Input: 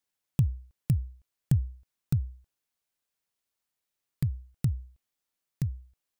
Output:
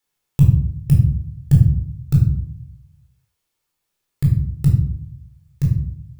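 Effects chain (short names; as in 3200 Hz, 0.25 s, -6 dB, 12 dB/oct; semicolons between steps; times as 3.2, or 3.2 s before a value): shoebox room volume 990 m³, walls furnished, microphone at 4.2 m; gain +4.5 dB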